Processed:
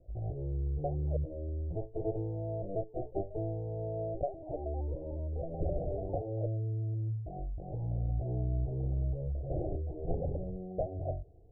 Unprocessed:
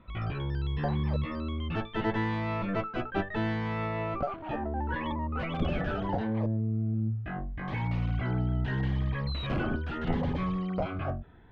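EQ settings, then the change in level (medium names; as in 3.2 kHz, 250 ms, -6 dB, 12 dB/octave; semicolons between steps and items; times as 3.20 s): steep low-pass 730 Hz 72 dB/octave; static phaser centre 540 Hz, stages 4; 0.0 dB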